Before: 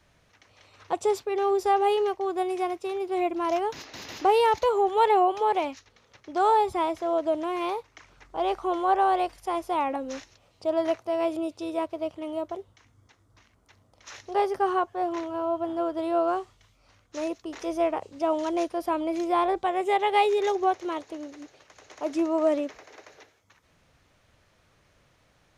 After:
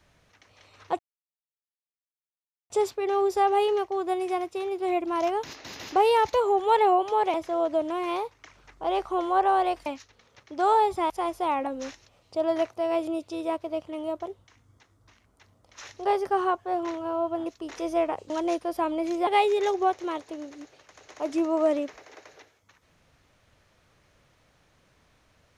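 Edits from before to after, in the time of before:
0.99 s: insert silence 1.71 s
5.63–6.87 s: move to 9.39 s
15.75–17.30 s: delete
18.14–18.39 s: delete
19.36–20.08 s: delete

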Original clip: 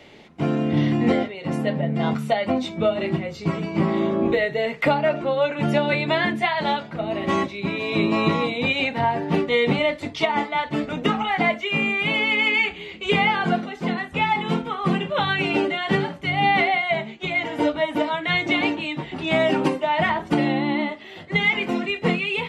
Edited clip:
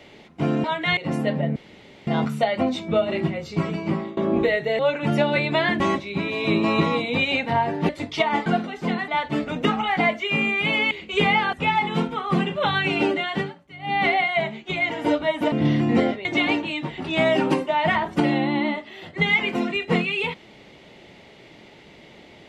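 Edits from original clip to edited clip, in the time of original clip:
0.64–1.37 s: swap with 18.06–18.39 s
1.96 s: insert room tone 0.51 s
3.68–4.06 s: fade out, to -23.5 dB
4.68–5.35 s: delete
6.36–7.28 s: delete
9.37–9.92 s: delete
12.32–12.83 s: delete
13.45–14.07 s: move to 10.49 s
15.78–16.64 s: dip -17.5 dB, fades 0.31 s

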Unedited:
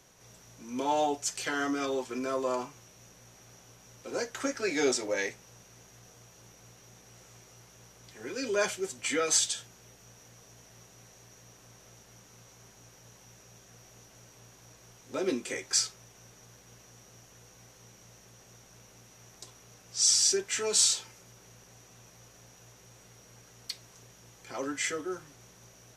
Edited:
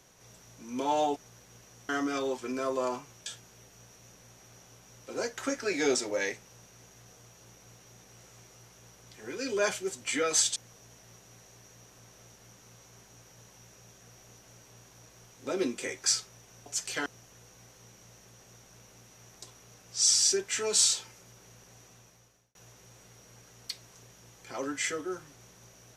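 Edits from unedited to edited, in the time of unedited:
1.16–1.56 s: swap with 16.33–17.06 s
9.53–10.23 s: move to 2.93 s
21.86–22.55 s: fade out

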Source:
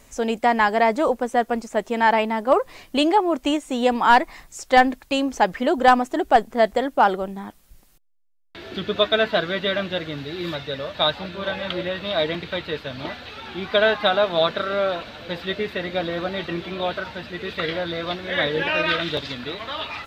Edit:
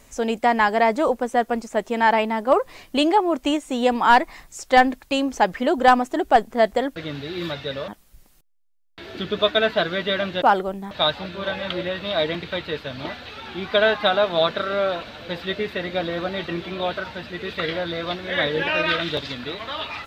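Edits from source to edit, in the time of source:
6.96–7.45 s: swap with 9.99–10.91 s

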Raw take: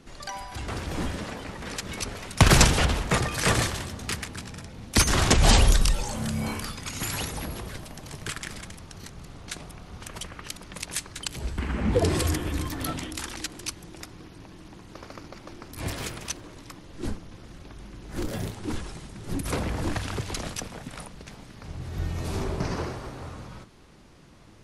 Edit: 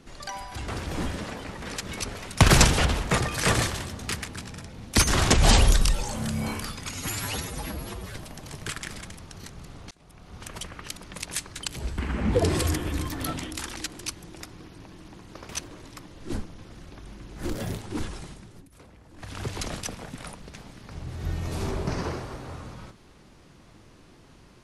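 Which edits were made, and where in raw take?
6.94–7.74 s: stretch 1.5×
9.51–10.05 s: fade in
15.09–16.22 s: delete
19.00–20.24 s: dip -23 dB, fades 0.35 s

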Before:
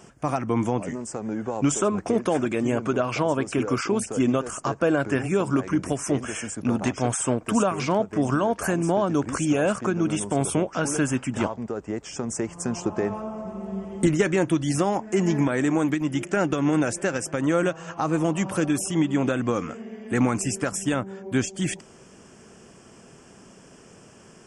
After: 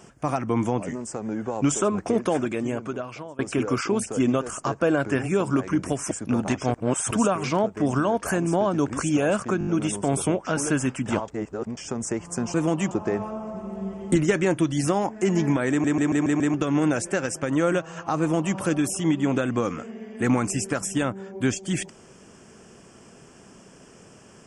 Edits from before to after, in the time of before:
2.28–3.39 s: fade out, to -23.5 dB
6.11–6.47 s: delete
7.10–7.47 s: reverse
9.95 s: stutter 0.02 s, 5 plays
11.56–12.05 s: reverse
15.61 s: stutter in place 0.14 s, 6 plays
18.11–18.48 s: copy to 12.82 s

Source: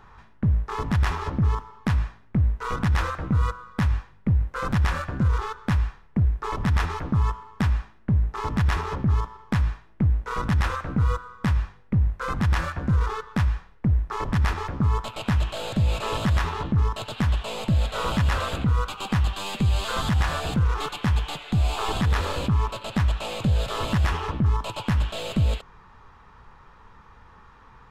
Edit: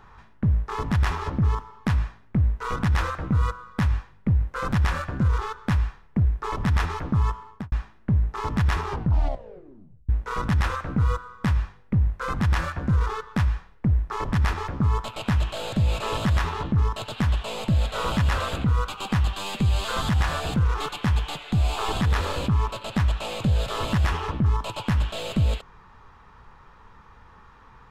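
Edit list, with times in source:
7.47–7.72 s: studio fade out
8.84 s: tape stop 1.25 s

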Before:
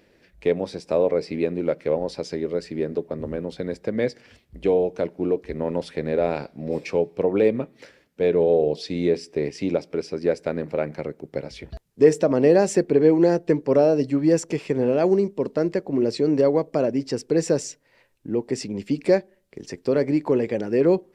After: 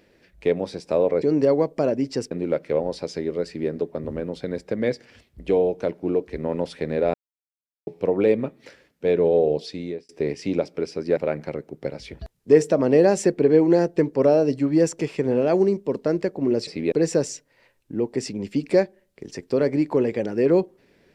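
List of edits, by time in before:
1.22–1.47 s: swap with 16.18–17.27 s
6.30–7.03 s: mute
8.71–9.25 s: fade out
10.33–10.68 s: delete

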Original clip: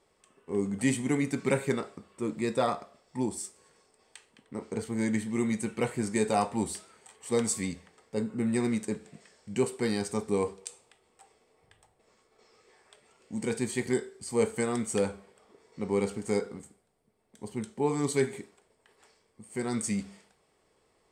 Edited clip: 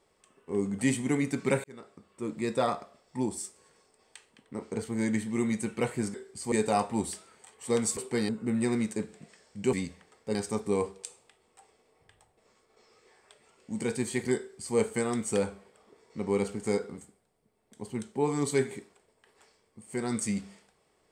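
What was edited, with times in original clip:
1.64–2.79 s: fade in equal-power
7.59–8.21 s: swap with 9.65–9.97 s
14.00–14.38 s: copy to 6.14 s

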